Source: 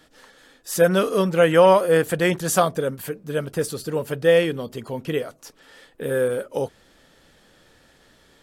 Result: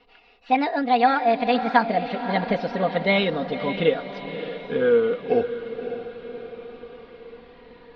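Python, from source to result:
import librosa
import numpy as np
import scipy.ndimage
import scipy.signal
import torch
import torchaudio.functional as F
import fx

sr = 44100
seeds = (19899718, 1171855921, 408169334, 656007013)

y = fx.speed_glide(x, sr, from_pct=159, to_pct=53)
y = scipy.signal.sosfilt(scipy.signal.butter(8, 4300.0, 'lowpass', fs=sr, output='sos'), y)
y = y + 0.69 * np.pad(y, (int(4.2 * sr / 1000.0), 0))[:len(y)]
y = fx.rider(y, sr, range_db=4, speed_s=0.5)
y = fx.echo_diffused(y, sr, ms=565, feedback_pct=55, wet_db=-10.5)
y = F.gain(torch.from_numpy(y), -2.0).numpy()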